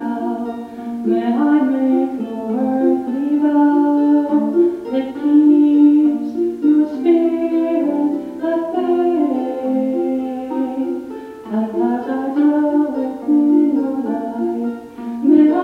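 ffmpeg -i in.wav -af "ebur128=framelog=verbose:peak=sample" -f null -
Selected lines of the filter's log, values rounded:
Integrated loudness:
  I:         -16.7 LUFS
  Threshold: -26.8 LUFS
Loudness range:
  LRA:         5.3 LU
  Threshold: -36.6 LUFS
  LRA low:   -19.6 LUFS
  LRA high:  -14.3 LUFS
Sample peak:
  Peak:       -1.6 dBFS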